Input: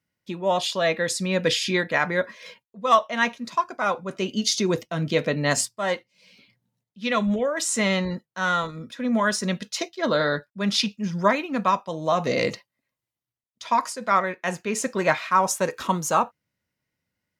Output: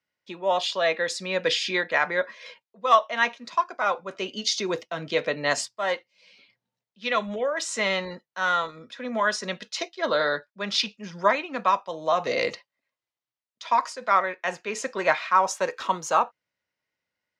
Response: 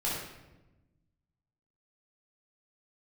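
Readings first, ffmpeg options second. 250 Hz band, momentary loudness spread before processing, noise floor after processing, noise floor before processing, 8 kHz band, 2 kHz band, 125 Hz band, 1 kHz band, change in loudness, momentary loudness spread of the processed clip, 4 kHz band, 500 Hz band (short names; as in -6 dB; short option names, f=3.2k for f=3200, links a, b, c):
-10.0 dB, 7 LU, under -85 dBFS, under -85 dBFS, -6.0 dB, 0.0 dB, -12.5 dB, 0.0 dB, -1.5 dB, 9 LU, -1.0 dB, -1.5 dB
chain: -filter_complex "[0:a]acrossover=split=380 6600:gain=0.2 1 0.112[a][b][c];[a][b][c]amix=inputs=3:normalize=0"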